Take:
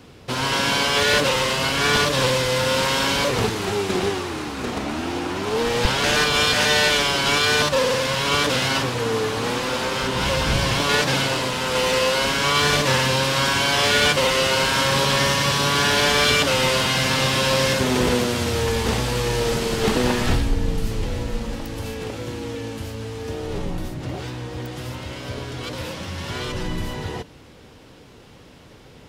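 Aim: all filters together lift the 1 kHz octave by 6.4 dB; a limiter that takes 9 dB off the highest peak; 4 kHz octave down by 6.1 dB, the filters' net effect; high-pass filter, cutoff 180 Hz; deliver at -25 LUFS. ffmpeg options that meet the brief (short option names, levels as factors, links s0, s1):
-af "highpass=180,equalizer=f=1000:t=o:g=8,equalizer=f=4000:t=o:g=-9,volume=0.841,alimiter=limit=0.168:level=0:latency=1"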